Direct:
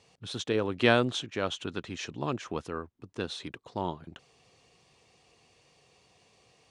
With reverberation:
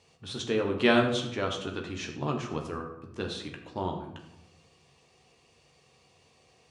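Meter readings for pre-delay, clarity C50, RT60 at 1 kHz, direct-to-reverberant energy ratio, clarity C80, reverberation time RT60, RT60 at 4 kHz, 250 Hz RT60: 13 ms, 7.0 dB, 0.85 s, 2.0 dB, 9.5 dB, 0.85 s, 0.50 s, 1.1 s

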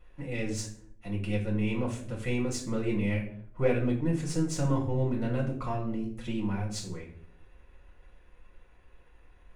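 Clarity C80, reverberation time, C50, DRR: 12.0 dB, 0.65 s, 8.5 dB, −3.0 dB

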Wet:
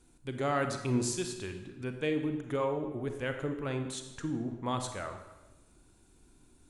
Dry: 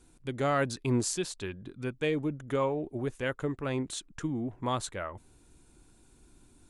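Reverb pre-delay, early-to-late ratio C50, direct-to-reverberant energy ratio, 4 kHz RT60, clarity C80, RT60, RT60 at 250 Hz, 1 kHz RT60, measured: 32 ms, 7.5 dB, 6.0 dB, 0.90 s, 9.5 dB, 1.1 s, 1.2 s, 1.1 s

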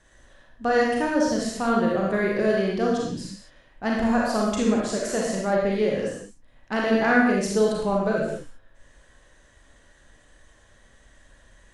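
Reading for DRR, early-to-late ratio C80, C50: −3.5 dB, 3.0 dB, −0.5 dB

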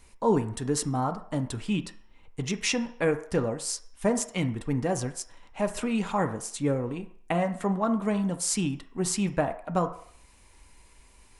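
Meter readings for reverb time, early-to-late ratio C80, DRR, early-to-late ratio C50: 0.60 s, 16.0 dB, 6.0 dB, 12.5 dB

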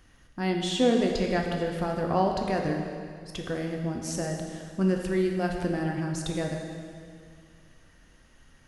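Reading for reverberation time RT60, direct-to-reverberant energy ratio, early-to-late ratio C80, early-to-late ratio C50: 2.1 s, 1.5 dB, 4.5 dB, 3.5 dB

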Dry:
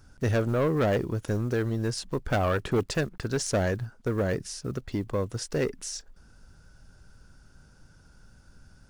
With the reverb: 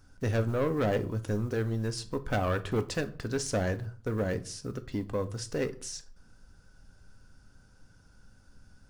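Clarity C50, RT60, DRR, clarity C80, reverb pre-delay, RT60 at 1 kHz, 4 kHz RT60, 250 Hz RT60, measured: 17.5 dB, 0.45 s, 9.0 dB, 22.5 dB, 4 ms, 0.45 s, 0.30 s, 0.60 s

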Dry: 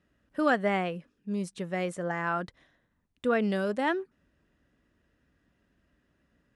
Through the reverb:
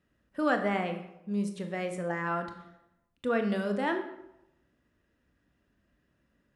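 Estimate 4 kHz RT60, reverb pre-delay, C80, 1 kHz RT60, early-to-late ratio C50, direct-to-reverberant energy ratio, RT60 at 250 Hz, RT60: 0.60 s, 20 ms, 11.0 dB, 0.85 s, 8.5 dB, 5.5 dB, 0.80 s, 0.85 s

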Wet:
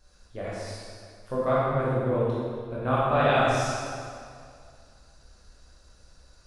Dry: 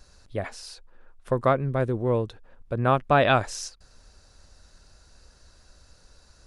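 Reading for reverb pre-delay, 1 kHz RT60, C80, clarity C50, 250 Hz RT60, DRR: 15 ms, 2.2 s, −1.5 dB, −3.5 dB, 2.2 s, −9.0 dB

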